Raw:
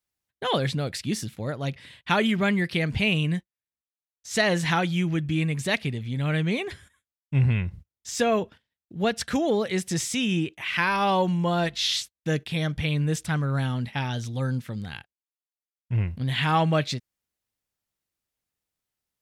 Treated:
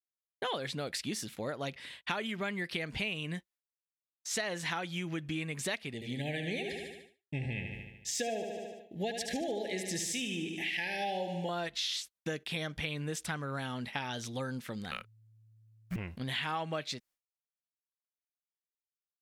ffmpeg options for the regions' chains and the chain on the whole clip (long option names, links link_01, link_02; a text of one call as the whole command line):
ffmpeg -i in.wav -filter_complex "[0:a]asettb=1/sr,asplit=3[link_01][link_02][link_03];[link_01]atrim=end=5.944[link_04];[link_02]atrim=start=5.94:end=11.49,asetpts=PTS-STARTPTS,afade=type=in:duration=0.004:curve=qsin,afade=type=out:start_time=5.546:duration=0.004:curve=qsin,asuperstop=centerf=1200:order=20:qfactor=1.6,aecho=1:1:74|148|222|296|370|444|518|592:0.422|0.249|0.147|0.0866|0.0511|0.0301|0.0178|0.0105,atrim=end_sample=244755[link_05];[link_03]atrim=start=11.486[link_06];[link_04][link_05]acrossfade=duration=0.004:curve1=hsin:curve2=qsin[link_07];[link_07][link_06]acrossfade=duration=0.004:curve1=qsin:curve2=hsin,asettb=1/sr,asplit=3[link_08][link_09][link_10];[link_08]atrim=end=14.914[link_11];[link_09]atrim=start=14.91:end=15.96,asetpts=PTS-STARTPTS,afade=type=in:duration=0.004:curve=qsin,afade=type=out:start_time=1.046:duration=0.004:curve=qsin,acrusher=bits=8:mode=log:mix=0:aa=0.000001,aeval=exprs='val(0)+0.00562*sin(2*PI*410*n/s)':channel_layout=same,afreqshift=-300[link_12];[link_10]atrim=start=15.956[link_13];[link_11][link_12]acrossfade=duration=0.004:curve1=hsin:curve2=qsin[link_14];[link_14][link_13]acrossfade=duration=0.004:curve1=qsin:curve2=hsin,agate=range=-33dB:threshold=-48dB:ratio=3:detection=peak,equalizer=frequency=100:width=0.72:gain=-14.5,acompressor=threshold=-34dB:ratio=6,volume=1dB" out.wav